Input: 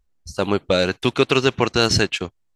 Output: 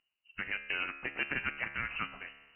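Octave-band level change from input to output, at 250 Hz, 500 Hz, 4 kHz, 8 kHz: −26.0 dB, −31.0 dB, −21.5 dB, below −40 dB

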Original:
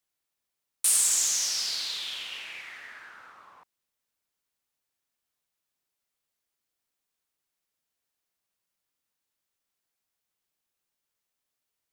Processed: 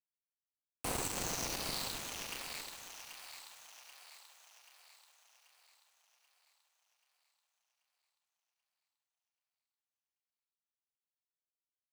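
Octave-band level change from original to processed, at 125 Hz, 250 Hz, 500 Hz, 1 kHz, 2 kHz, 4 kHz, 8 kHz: can't be measured, +13.5 dB, +9.5 dB, +3.0 dB, −6.0 dB, −11.0 dB, −16.0 dB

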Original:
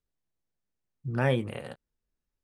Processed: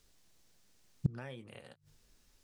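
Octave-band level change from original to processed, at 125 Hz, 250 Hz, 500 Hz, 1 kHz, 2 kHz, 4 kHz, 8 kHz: −8.0 dB, −9.0 dB, −19.5 dB, −19.0 dB, −17.5 dB, −14.0 dB, can't be measured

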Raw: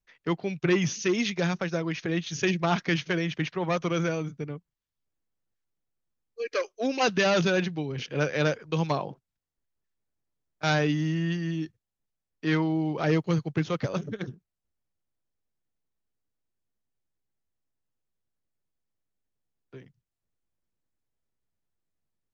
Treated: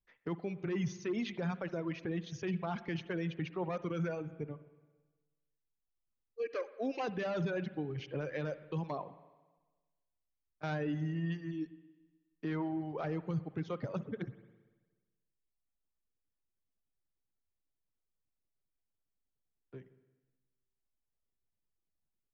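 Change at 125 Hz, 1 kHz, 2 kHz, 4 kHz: −9.5, −11.5, −14.5, −17.5 decibels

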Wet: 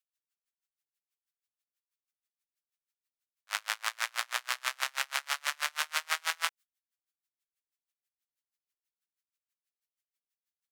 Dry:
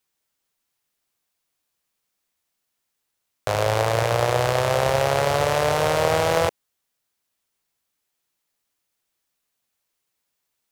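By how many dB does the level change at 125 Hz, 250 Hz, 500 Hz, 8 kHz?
below −40 dB, below −40 dB, −32.5 dB, −5.0 dB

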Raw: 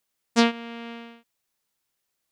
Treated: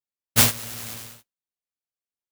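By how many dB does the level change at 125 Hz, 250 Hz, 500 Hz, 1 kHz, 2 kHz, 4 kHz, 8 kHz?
can't be measured, −8.5 dB, −7.0 dB, −3.5 dB, +1.5 dB, +4.5 dB, +17.0 dB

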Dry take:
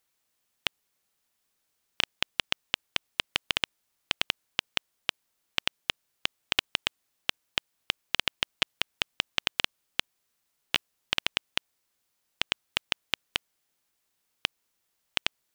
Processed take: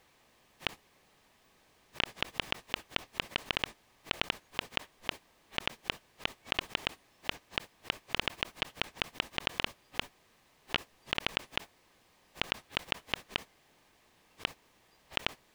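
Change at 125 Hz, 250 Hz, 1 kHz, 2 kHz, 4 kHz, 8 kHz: +1.5, +1.5, −1.0, −4.0, −6.0, −9.0 decibels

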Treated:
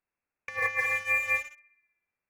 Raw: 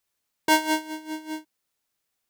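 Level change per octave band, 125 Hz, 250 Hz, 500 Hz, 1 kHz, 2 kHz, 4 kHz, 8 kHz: can't be measured, below −35 dB, −7.5 dB, −10.0 dB, +4.0 dB, −18.0 dB, −13.0 dB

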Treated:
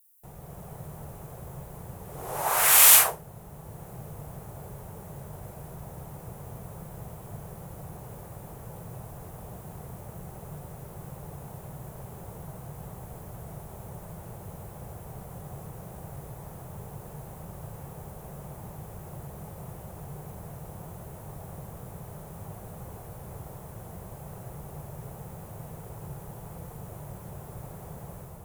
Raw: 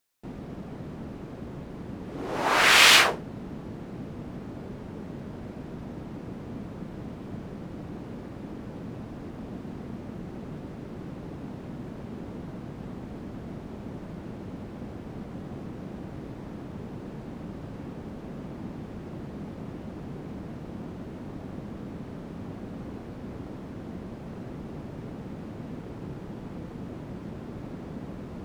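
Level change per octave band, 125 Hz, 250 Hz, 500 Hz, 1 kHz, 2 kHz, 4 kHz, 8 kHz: −0.5, −9.5, −4.0, −3.0, −8.5, −8.0, +8.5 decibels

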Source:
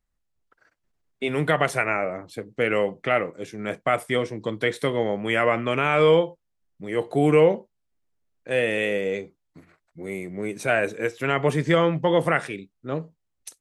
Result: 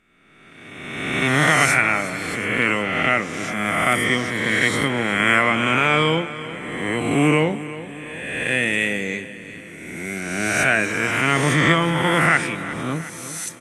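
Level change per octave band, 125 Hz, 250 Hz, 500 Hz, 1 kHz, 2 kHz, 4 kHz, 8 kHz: +4.5 dB, +5.0 dB, −3.0 dB, +5.0 dB, +9.5 dB, +9.0 dB, can't be measured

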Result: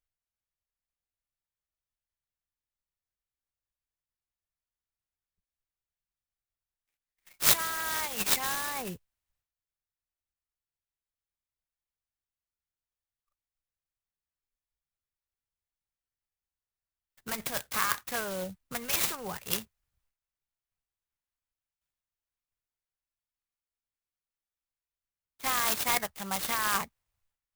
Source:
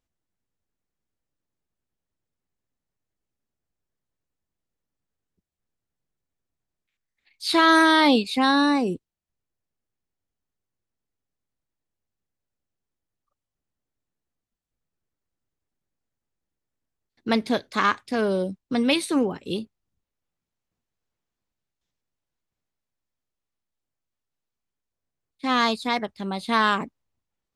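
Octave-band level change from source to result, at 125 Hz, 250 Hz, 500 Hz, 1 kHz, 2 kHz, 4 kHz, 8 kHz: −8.5, −21.0, −14.0, −11.0, −9.0, −7.0, +9.0 decibels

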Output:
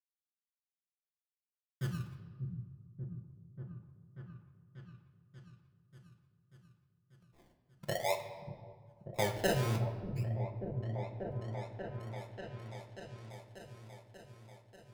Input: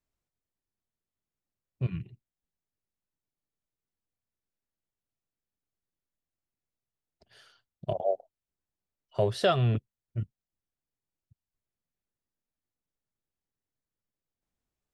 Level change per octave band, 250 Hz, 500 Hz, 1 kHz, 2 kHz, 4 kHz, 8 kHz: −2.0, −6.0, −4.0, +1.0, −4.0, +6.5 decibels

